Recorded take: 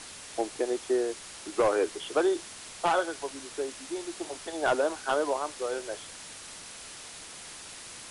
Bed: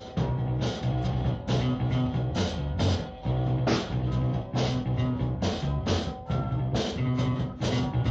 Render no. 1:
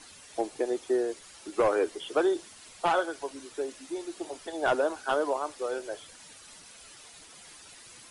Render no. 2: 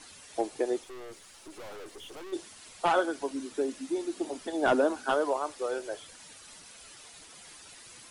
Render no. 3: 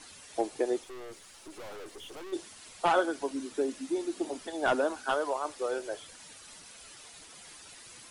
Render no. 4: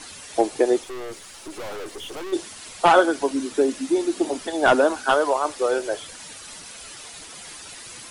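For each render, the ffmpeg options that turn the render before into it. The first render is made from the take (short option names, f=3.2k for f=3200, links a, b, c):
-af "afftdn=nr=10:nf=-45"
-filter_complex "[0:a]asplit=3[a][b][c];[a]afade=t=out:st=0.82:d=0.02[d];[b]aeval=exprs='(tanh(141*val(0)+0.55)-tanh(0.55))/141':c=same,afade=t=in:st=0.82:d=0.02,afade=t=out:st=2.32:d=0.02[e];[c]afade=t=in:st=2.32:d=0.02[f];[d][e][f]amix=inputs=3:normalize=0,asettb=1/sr,asplit=3[g][h][i];[g]atrim=end=2.964[j];[h]atrim=start=2.96:end=5.11,asetpts=PTS-STARTPTS,afade=t=in:d=0.004:c=qsin,afade=t=out:st=2.146:d=0.004:c=qsin,equalizer=f=250:t=o:w=0.77:g=11[k];[i]atrim=start=5.106[l];[j][k]acrossfade=d=0.004:c1=hsin:c2=qsin[m];[m][l]acrossfade=d=0.004:c1=qsin:c2=hsin"
-filter_complex "[0:a]asettb=1/sr,asplit=3[a][b][c];[a]atrim=end=4.464[d];[b]atrim=start=4.46:end=5.45,asetpts=PTS-STARTPTS,afade=t=in:d=0.004:c=qsin,afade=t=out:st=0.986:d=0.004:c=qsin,equalizer=f=280:t=o:w=2.1:g=-6[e];[c]atrim=start=5.446[f];[d][e]acrossfade=d=0.004:c1=hsin:c2=qsin[g];[g][f]acrossfade=d=0.004:c1=qsin:c2=hsin"
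-af "volume=10.5dB"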